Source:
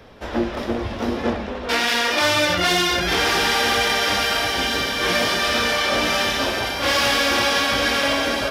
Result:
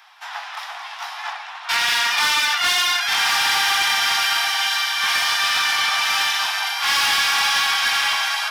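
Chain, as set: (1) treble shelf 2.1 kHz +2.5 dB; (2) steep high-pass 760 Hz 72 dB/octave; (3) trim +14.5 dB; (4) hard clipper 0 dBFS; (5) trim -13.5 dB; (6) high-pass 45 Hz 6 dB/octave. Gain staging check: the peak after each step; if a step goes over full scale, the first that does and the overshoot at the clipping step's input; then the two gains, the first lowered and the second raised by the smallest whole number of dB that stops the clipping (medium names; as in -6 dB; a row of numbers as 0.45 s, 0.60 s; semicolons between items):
-6.0 dBFS, -5.0 dBFS, +9.5 dBFS, 0.0 dBFS, -13.5 dBFS, -13.0 dBFS; step 3, 9.5 dB; step 3 +4.5 dB, step 5 -3.5 dB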